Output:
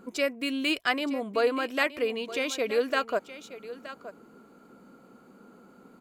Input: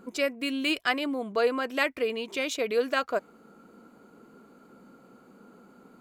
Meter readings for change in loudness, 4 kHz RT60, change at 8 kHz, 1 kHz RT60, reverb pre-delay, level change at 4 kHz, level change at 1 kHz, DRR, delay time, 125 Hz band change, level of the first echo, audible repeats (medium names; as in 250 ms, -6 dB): 0.0 dB, no reverb, 0.0 dB, no reverb, no reverb, 0.0 dB, 0.0 dB, no reverb, 921 ms, no reading, -14.5 dB, 1